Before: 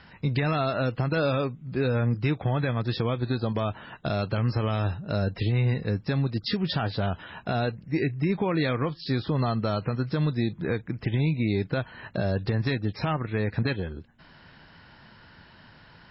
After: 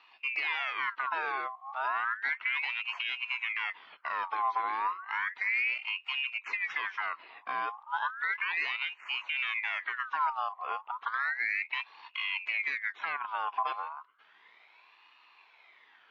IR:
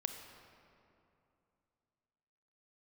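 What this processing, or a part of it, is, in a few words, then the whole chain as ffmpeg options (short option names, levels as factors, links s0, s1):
voice changer toy: -af "aeval=exprs='val(0)*sin(2*PI*1800*n/s+1800*0.5/0.33*sin(2*PI*0.33*n/s))':c=same,highpass=540,equalizer=f=560:t=q:w=4:g=-7,equalizer=f=1000:t=q:w=4:g=9,equalizer=f=2100:t=q:w=4:g=5,lowpass=f=3700:w=0.5412,lowpass=f=3700:w=1.3066,volume=0.447"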